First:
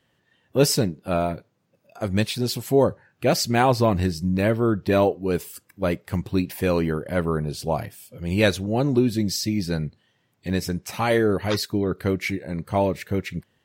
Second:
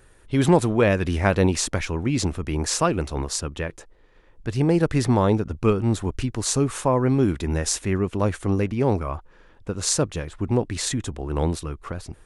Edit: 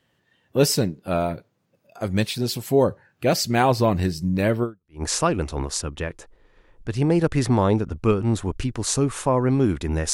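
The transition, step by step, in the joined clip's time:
first
4.83 switch to second from 2.42 s, crossfade 0.40 s exponential

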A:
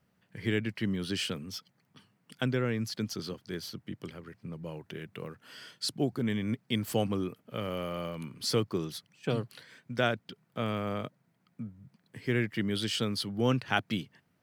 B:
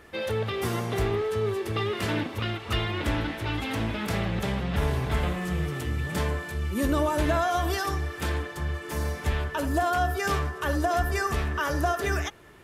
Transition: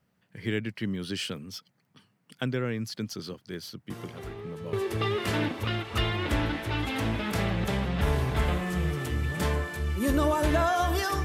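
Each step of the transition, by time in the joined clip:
A
3.9 add B from 0.65 s 0.83 s -14 dB
4.73 switch to B from 1.48 s

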